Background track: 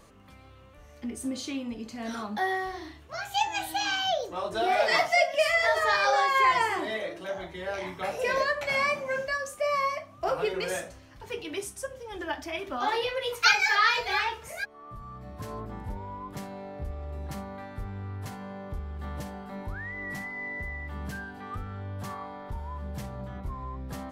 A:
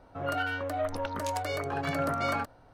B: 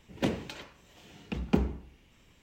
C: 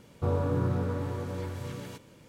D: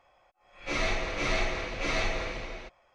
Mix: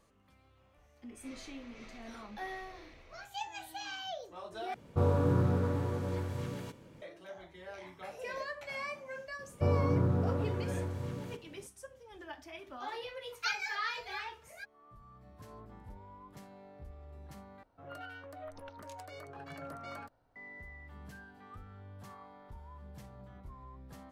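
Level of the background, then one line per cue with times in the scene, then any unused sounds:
background track -13.5 dB
0.57 add D -11 dB + compressor 2:1, threshold -50 dBFS
4.74 replace with C + mismatched tape noise reduction decoder only
9.39 add C -4.5 dB + tilt shelf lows +4 dB, about 1400 Hz
17.63 replace with A -15.5 dB
not used: B

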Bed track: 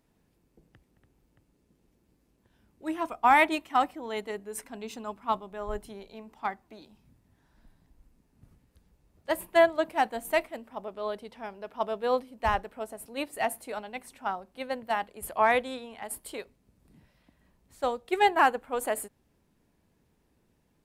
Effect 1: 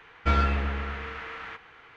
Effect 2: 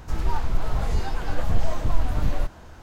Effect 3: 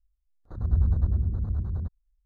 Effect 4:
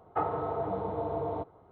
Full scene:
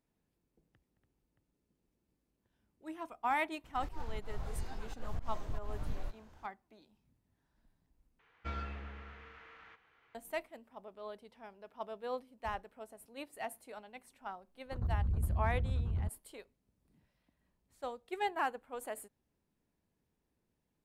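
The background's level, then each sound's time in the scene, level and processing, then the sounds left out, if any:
bed track -12.5 dB
3.64 add 2 -16 dB + auto swell 0.121 s
8.19 replace with 1 -17.5 dB
14.21 add 3 -4.5 dB + compressor, threshold -24 dBFS
not used: 4

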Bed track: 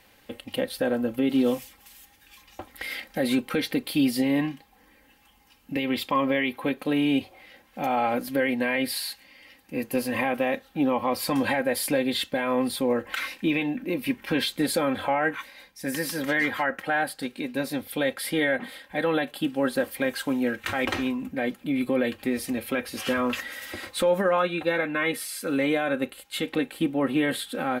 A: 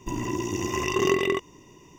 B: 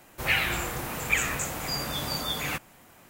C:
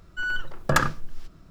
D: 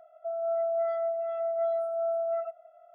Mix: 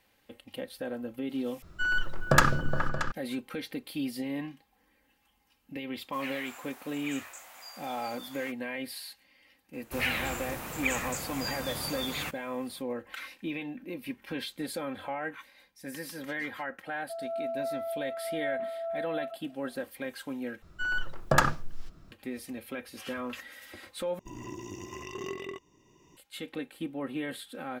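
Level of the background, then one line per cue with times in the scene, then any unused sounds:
bed track -11 dB
1.62 replace with C + repeats that get brighter 0.209 s, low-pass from 400 Hz, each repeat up 2 oct, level -6 dB
5.94 add B -15.5 dB + steep high-pass 610 Hz
9.73 add B -5.5 dB
16.85 add D -5.5 dB
20.62 replace with C -3 dB + dynamic EQ 760 Hz, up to +6 dB, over -41 dBFS, Q 2
24.19 replace with A -15.5 dB + recorder AGC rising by 13 dB/s

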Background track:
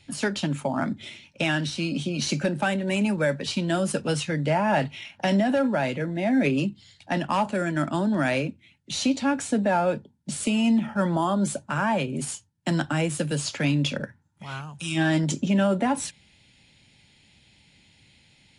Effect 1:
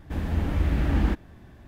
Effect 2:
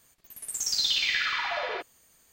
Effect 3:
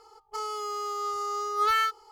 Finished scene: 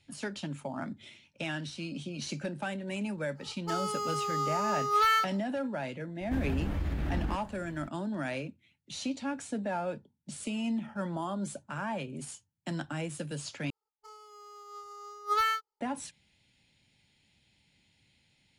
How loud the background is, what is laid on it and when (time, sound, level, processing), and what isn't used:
background track -11 dB
3.34 add 3 -0.5 dB, fades 0.10 s
6.21 add 1 -2 dB + compressor, threshold -26 dBFS
13.7 replace with 3 -2 dB + upward expander 2.5:1, over -46 dBFS
not used: 2

